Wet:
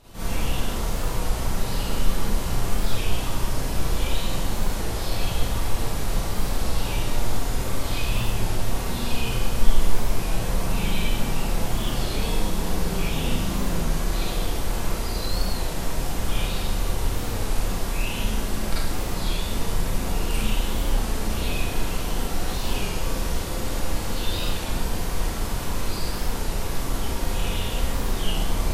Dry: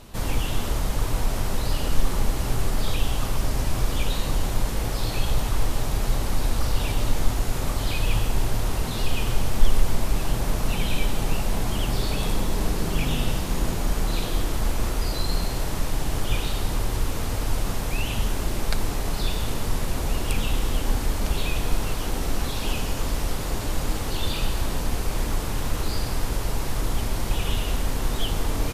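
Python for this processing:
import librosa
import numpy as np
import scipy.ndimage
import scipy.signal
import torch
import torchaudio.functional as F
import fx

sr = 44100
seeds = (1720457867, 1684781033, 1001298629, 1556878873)

y = fx.rev_schroeder(x, sr, rt60_s=0.81, comb_ms=33, drr_db=-9.0)
y = fx.record_warp(y, sr, rpm=33.33, depth_cents=100.0)
y = y * librosa.db_to_amplitude(-9.0)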